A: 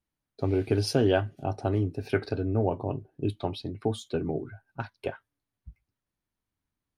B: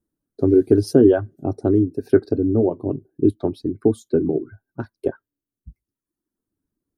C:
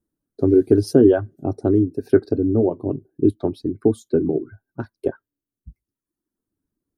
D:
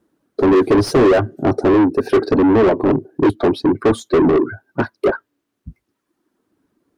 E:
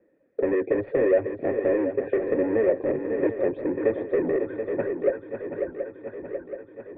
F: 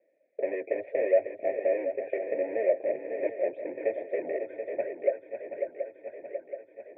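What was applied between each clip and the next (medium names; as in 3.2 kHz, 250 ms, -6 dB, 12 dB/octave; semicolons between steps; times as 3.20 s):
reverb removal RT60 1 s; FFT filter 130 Hz 0 dB, 340 Hz +11 dB, 810 Hz -7 dB, 1.6 kHz -5 dB, 2.4 kHz -20 dB, 4.4 kHz -10 dB, 10 kHz -1 dB; trim +5 dB
no audible change
overdrive pedal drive 35 dB, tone 1.3 kHz, clips at -1 dBFS; trim -3.5 dB
cascade formant filter e; shuffle delay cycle 727 ms, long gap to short 3:1, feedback 49%, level -9 dB; three bands compressed up and down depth 40%; trim +1.5 dB
two resonant band-passes 1.2 kHz, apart 1.8 oct; trim +5.5 dB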